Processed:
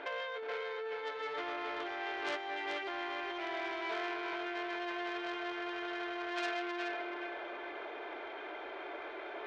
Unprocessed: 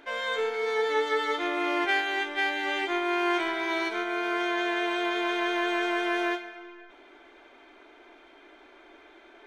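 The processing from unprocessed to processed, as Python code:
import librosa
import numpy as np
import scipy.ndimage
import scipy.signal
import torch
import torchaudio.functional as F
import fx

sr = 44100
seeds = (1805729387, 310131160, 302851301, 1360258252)

y = np.minimum(x, 2.0 * 10.0 ** (-23.0 / 20.0) - x)
y = scipy.signal.sosfilt(scipy.signal.butter(2, 41.0, 'highpass', fs=sr, output='sos'), y)
y = fx.low_shelf_res(y, sr, hz=340.0, db=-9.5, q=1.5)
y = fx.over_compress(y, sr, threshold_db=-38.0, ratio=-1.0)
y = fx.air_absorb(y, sr, metres=250.0)
y = fx.echo_feedback(y, sr, ms=426, feedback_pct=41, wet_db=-4.0)
y = fx.transformer_sat(y, sr, knee_hz=2800.0)
y = y * 10.0 ** (1.0 / 20.0)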